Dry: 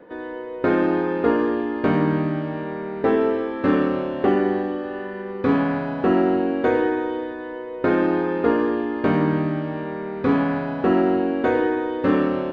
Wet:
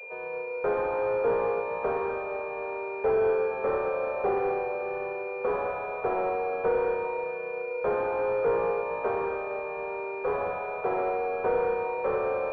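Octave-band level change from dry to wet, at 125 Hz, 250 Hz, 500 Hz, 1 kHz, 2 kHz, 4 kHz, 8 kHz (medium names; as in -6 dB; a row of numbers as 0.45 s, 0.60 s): -19.0 dB, -21.5 dB, -4.0 dB, -3.5 dB, -6.5 dB, under -15 dB, no reading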